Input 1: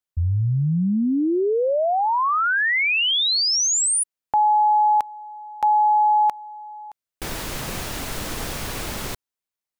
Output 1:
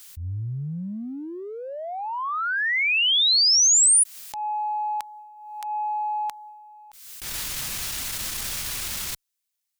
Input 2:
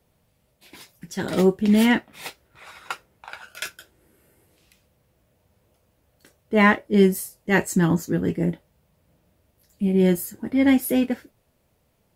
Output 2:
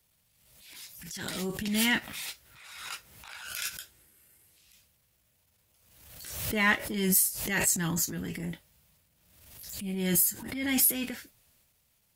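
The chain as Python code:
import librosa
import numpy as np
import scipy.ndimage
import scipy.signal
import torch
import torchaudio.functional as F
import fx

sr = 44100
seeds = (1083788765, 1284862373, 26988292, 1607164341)

y = fx.high_shelf(x, sr, hz=3300.0, db=4.5)
y = fx.transient(y, sr, attack_db=-12, sustain_db=5)
y = fx.tone_stack(y, sr, knobs='5-5-5')
y = fx.pre_swell(y, sr, db_per_s=51.0)
y = y * librosa.db_to_amplitude(6.0)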